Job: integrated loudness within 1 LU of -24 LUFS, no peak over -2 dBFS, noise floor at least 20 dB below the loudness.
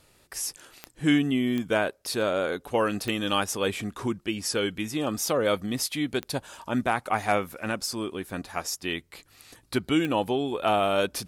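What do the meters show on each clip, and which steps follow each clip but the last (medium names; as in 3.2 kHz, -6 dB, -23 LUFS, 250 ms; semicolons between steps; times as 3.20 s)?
clicks found 5; loudness -27.5 LUFS; peak level -10.5 dBFS; loudness target -24.0 LUFS
-> de-click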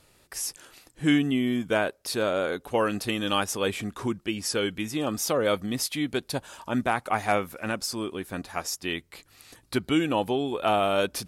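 clicks found 0; loudness -27.5 LUFS; peak level -10.5 dBFS; loudness target -24.0 LUFS
-> trim +3.5 dB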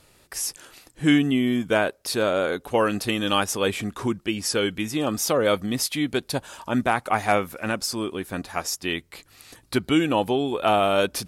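loudness -24.0 LUFS; peak level -7.0 dBFS; noise floor -58 dBFS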